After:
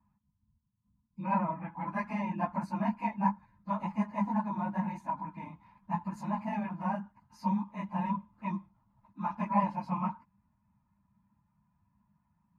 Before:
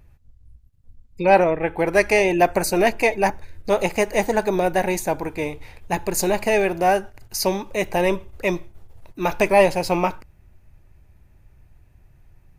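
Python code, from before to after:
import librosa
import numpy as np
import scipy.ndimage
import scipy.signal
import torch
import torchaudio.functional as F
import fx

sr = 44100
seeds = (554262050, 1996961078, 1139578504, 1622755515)

y = fx.phase_scramble(x, sr, seeds[0], window_ms=50)
y = fx.double_bandpass(y, sr, hz=450.0, octaves=2.3)
y = fx.notch_comb(y, sr, f0_hz=380.0)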